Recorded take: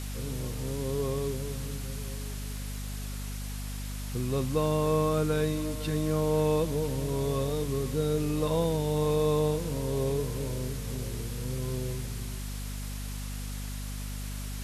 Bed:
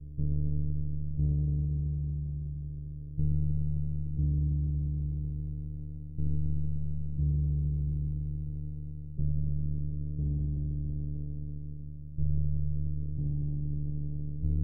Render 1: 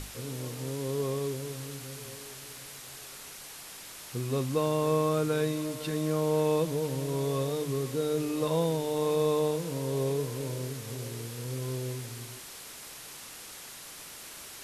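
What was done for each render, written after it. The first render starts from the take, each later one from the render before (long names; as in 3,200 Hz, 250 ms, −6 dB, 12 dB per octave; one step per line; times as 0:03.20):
mains-hum notches 50/100/150/200/250 Hz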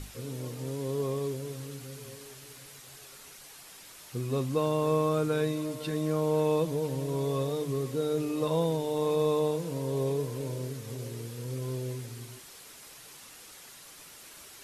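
broadband denoise 6 dB, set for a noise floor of −46 dBFS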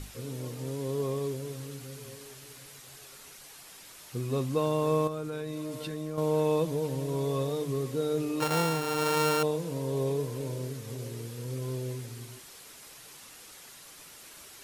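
0:05.07–0:06.18: downward compressor, threshold −32 dBFS
0:08.40–0:09.43: samples sorted by size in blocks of 32 samples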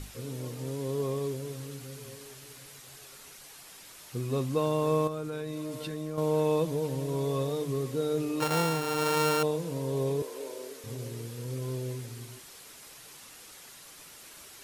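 0:10.22–0:10.84: high-pass filter 350 Hz 24 dB per octave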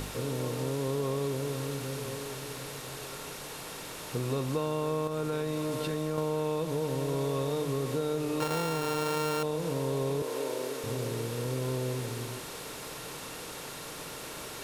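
compressor on every frequency bin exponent 0.6
downward compressor, threshold −27 dBFS, peak gain reduction 6.5 dB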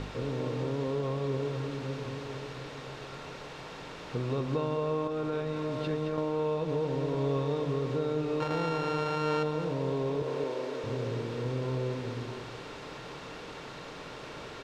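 high-frequency loss of the air 170 metres
single-tap delay 217 ms −8 dB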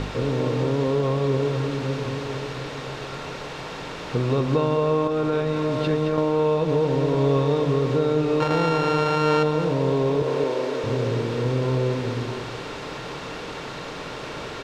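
level +9.5 dB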